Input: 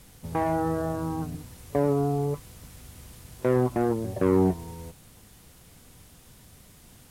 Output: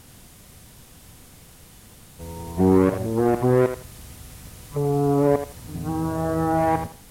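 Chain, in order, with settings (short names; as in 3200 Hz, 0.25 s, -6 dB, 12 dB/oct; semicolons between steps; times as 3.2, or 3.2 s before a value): whole clip reversed; thinning echo 82 ms, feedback 24%, high-pass 510 Hz, level -7 dB; gain +4.5 dB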